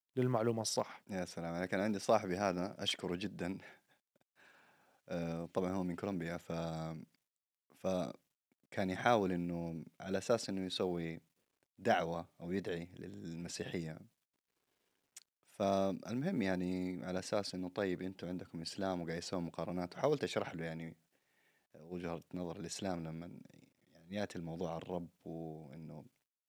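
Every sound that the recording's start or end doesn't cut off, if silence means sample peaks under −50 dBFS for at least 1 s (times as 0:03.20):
0:05.08–0:14.03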